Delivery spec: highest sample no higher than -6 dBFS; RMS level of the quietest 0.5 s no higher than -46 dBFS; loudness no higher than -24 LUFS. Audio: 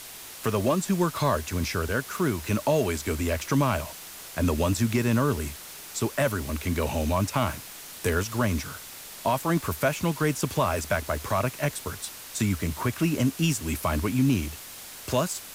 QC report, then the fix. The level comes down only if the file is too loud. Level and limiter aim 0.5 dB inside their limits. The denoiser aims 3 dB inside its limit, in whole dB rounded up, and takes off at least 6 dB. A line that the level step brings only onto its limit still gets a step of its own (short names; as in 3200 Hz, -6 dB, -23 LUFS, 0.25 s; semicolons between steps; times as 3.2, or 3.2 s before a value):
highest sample -13.0 dBFS: OK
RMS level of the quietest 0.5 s -42 dBFS: fail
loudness -27.0 LUFS: OK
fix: denoiser 7 dB, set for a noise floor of -42 dBFS